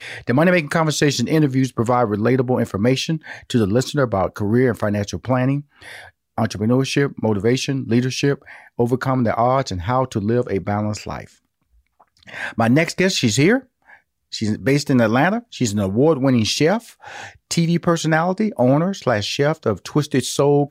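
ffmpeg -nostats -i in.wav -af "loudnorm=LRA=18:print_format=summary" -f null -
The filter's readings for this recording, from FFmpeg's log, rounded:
Input Integrated:    -19.0 LUFS
Input True Peak:      -4.8 dBTP
Input LRA:             2.2 LU
Input Threshold:     -29.5 LUFS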